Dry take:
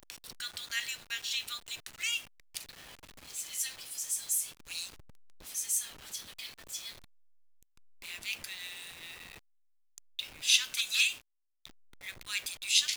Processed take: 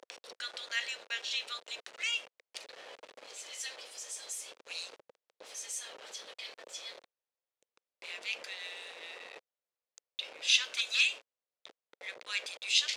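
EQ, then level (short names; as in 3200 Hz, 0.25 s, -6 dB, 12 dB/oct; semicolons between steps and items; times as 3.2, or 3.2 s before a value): resonant high-pass 500 Hz, resonance Q 3.5; air absorption 95 m; +1.5 dB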